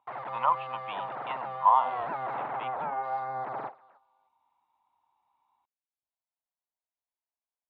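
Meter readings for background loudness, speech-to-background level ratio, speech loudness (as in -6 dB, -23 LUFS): -35.5 LUFS, 7.0 dB, -28.5 LUFS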